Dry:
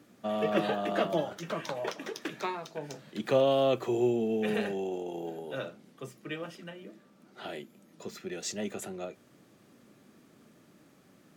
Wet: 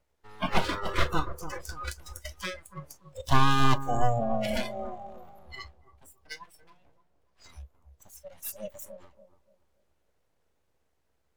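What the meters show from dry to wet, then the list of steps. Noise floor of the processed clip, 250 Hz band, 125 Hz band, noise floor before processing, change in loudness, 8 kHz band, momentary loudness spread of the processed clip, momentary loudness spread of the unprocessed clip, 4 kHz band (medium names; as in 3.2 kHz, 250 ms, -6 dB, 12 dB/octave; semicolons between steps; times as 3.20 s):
-73 dBFS, -2.5 dB, +8.5 dB, -61 dBFS, +2.0 dB, +1.0 dB, 20 LU, 18 LU, +4.0 dB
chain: full-wave rectifier; peaking EQ 69 Hz +9.5 dB 0.29 oct; spectral noise reduction 22 dB; on a send: bucket-brigade echo 288 ms, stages 2048, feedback 30%, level -11 dB; on the sum: trim +6.5 dB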